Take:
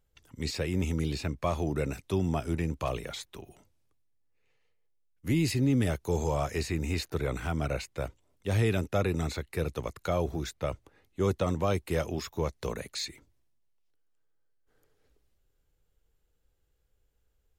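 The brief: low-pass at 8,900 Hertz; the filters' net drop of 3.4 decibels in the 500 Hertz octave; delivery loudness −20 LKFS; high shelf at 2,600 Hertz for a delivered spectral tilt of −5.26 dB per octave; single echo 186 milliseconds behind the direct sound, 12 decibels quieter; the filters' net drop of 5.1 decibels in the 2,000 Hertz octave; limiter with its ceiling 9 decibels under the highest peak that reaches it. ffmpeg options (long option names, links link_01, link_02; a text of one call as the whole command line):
ffmpeg -i in.wav -af "lowpass=8900,equalizer=frequency=500:width_type=o:gain=-4,equalizer=frequency=2000:width_type=o:gain=-8.5,highshelf=frequency=2600:gain=4,alimiter=level_in=2dB:limit=-24dB:level=0:latency=1,volume=-2dB,aecho=1:1:186:0.251,volume=17dB" out.wav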